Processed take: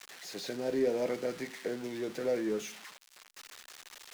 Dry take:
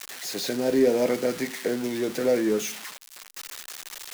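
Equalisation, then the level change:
parametric band 250 Hz −3.5 dB 0.27 octaves
high-shelf EQ 8,300 Hz −10 dB
−8.5 dB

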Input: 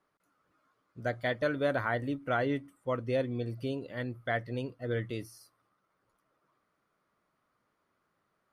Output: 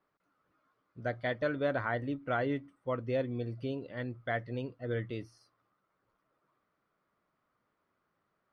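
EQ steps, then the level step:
high-frequency loss of the air 110 metres
notch filter 7,200 Hz, Q 5.9
−1.5 dB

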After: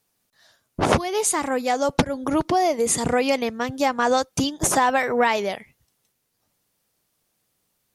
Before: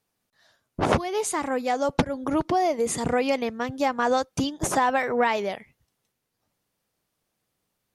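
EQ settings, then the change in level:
high-shelf EQ 4,300 Hz +7 dB
+2.5 dB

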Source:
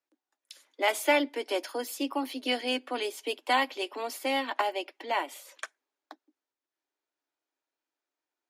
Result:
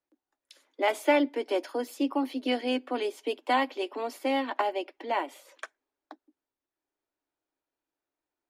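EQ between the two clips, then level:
spectral tilt −2.5 dB per octave
0.0 dB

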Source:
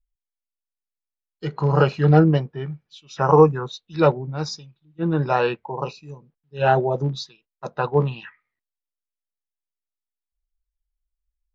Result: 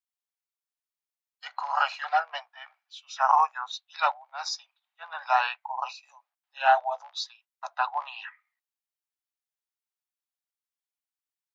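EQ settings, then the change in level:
Butterworth high-pass 690 Hz 72 dB per octave
0.0 dB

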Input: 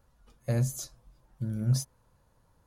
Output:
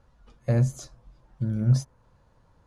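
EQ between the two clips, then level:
dynamic equaliser 4,000 Hz, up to −5 dB, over −54 dBFS, Q 0.79
high-frequency loss of the air 87 metres
+5.5 dB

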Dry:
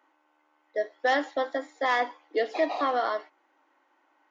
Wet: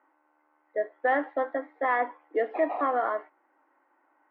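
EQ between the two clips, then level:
low-pass filter 2,000 Hz 24 dB per octave
0.0 dB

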